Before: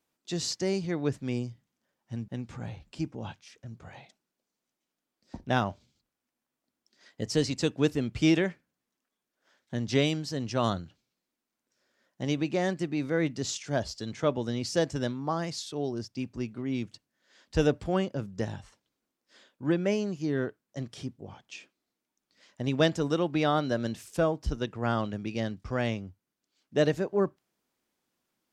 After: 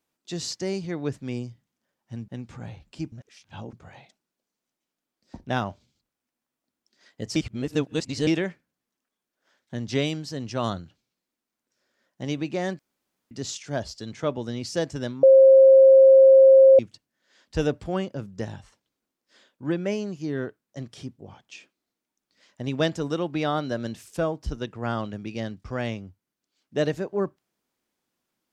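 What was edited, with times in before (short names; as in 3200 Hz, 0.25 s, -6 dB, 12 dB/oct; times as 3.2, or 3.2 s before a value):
3.12–3.73 reverse
7.36–8.27 reverse
12.79–13.31 room tone
15.23–16.79 bleep 534 Hz -9 dBFS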